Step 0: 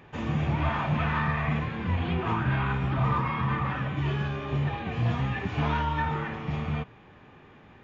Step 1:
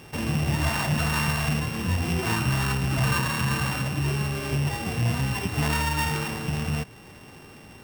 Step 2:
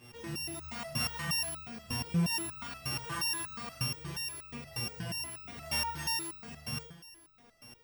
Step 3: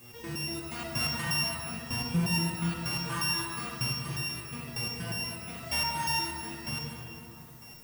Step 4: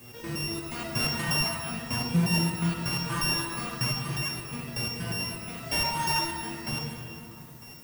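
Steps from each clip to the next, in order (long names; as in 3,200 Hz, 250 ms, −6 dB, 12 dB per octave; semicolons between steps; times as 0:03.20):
samples sorted by size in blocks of 16 samples; in parallel at 0 dB: downward compressor, threshold −36 dBFS, peak gain reduction 13.5 dB
flutter between parallel walls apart 7 metres, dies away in 0.48 s; step-sequenced resonator 8.4 Hz 120–1,300 Hz
background noise violet −58 dBFS; on a send at −1 dB: convolution reverb RT60 3.1 s, pre-delay 44 ms; on the sum: level +1.5 dB
high-pass filter 90 Hz; in parallel at −10 dB: sample-and-hold swept by an LFO 32×, swing 160% 0.43 Hz; on the sum: level +2 dB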